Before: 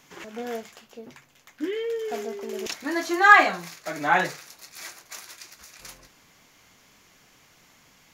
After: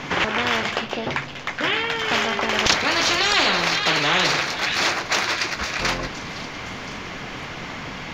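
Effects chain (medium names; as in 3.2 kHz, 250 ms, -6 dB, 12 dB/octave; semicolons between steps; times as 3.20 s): distance through air 230 m; repeats whose band climbs or falls 513 ms, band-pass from 3.9 kHz, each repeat 0.7 oct, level -11.5 dB; spectrum-flattening compressor 10:1; trim +2.5 dB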